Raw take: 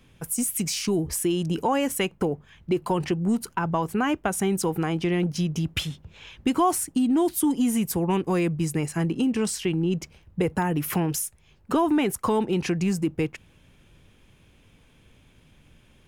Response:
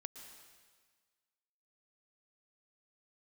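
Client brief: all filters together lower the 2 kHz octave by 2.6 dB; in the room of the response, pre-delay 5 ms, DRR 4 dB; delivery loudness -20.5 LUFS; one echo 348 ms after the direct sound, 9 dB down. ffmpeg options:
-filter_complex "[0:a]equalizer=f=2000:t=o:g=-3.5,aecho=1:1:348:0.355,asplit=2[s0][s1];[1:a]atrim=start_sample=2205,adelay=5[s2];[s1][s2]afir=irnorm=-1:irlink=0,volume=1[s3];[s0][s3]amix=inputs=2:normalize=0,volume=1.41"

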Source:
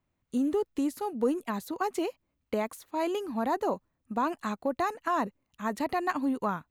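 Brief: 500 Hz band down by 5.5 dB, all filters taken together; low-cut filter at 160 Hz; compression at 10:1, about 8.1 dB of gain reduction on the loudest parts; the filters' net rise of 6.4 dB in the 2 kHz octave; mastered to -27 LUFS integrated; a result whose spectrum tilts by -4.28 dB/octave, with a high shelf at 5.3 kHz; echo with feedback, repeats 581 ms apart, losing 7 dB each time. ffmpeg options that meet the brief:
-af "highpass=160,equalizer=f=500:t=o:g=-8,equalizer=f=2000:t=o:g=8,highshelf=f=5300:g=4.5,acompressor=threshold=0.0282:ratio=10,aecho=1:1:581|1162|1743|2324|2905:0.447|0.201|0.0905|0.0407|0.0183,volume=2.99"

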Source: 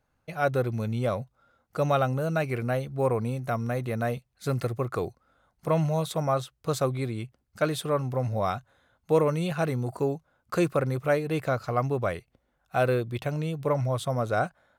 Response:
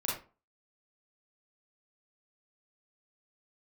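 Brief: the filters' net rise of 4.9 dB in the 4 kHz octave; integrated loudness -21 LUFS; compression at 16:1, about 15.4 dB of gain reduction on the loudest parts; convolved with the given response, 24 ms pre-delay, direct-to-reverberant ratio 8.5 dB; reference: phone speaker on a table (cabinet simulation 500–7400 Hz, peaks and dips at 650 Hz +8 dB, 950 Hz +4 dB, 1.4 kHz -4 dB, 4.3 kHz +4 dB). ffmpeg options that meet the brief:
-filter_complex "[0:a]equalizer=f=4000:t=o:g=3.5,acompressor=threshold=0.02:ratio=16,asplit=2[s0][s1];[1:a]atrim=start_sample=2205,adelay=24[s2];[s1][s2]afir=irnorm=-1:irlink=0,volume=0.211[s3];[s0][s3]amix=inputs=2:normalize=0,highpass=f=500:w=0.5412,highpass=f=500:w=1.3066,equalizer=f=650:t=q:w=4:g=8,equalizer=f=950:t=q:w=4:g=4,equalizer=f=1400:t=q:w=4:g=-4,equalizer=f=4300:t=q:w=4:g=4,lowpass=f=7400:w=0.5412,lowpass=f=7400:w=1.3066,volume=7.94"

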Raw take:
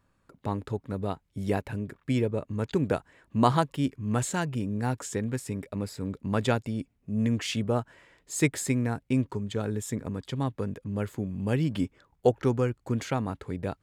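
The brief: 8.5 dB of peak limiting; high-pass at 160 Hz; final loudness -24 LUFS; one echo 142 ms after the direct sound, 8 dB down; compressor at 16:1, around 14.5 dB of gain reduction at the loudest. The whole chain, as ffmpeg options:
-af "highpass=160,acompressor=threshold=0.0316:ratio=16,alimiter=level_in=1.26:limit=0.0631:level=0:latency=1,volume=0.794,aecho=1:1:142:0.398,volume=5.01"

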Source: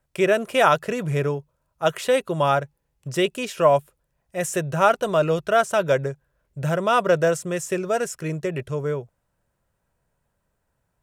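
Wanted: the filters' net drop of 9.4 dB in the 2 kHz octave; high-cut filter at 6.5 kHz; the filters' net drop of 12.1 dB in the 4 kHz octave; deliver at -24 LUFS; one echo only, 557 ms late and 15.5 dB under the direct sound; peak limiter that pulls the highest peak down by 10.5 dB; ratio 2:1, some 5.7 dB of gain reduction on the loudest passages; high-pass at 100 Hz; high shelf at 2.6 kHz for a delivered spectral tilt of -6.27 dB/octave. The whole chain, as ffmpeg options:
-af "highpass=100,lowpass=6500,equalizer=f=2000:t=o:g=-9,highshelf=f=2600:g=-9,equalizer=f=4000:t=o:g=-4.5,acompressor=threshold=0.0631:ratio=2,alimiter=limit=0.0668:level=0:latency=1,aecho=1:1:557:0.168,volume=2.82"

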